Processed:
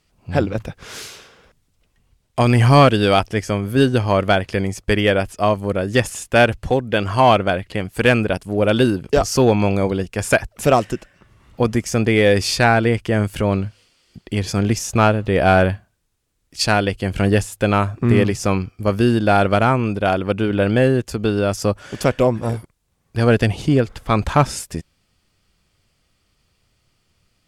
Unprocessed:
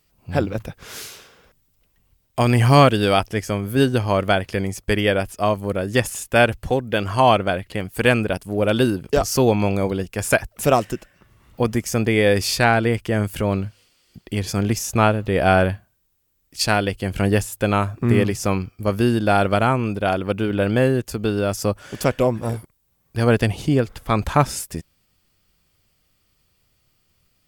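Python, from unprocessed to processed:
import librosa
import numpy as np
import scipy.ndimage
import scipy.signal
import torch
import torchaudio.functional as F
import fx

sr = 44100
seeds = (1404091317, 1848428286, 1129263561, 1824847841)

p1 = scipy.signal.sosfilt(scipy.signal.bessel(2, 8500.0, 'lowpass', norm='mag', fs=sr, output='sos'), x)
p2 = np.clip(10.0 ** (10.5 / 20.0) * p1, -1.0, 1.0) / 10.0 ** (10.5 / 20.0)
p3 = p1 + (p2 * librosa.db_to_amplitude(-3.0))
y = p3 * librosa.db_to_amplitude(-2.0)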